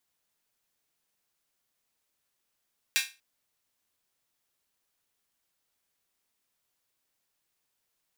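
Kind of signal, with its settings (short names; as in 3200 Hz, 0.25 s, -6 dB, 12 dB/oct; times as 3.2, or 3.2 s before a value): open hi-hat length 0.24 s, high-pass 2100 Hz, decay 0.28 s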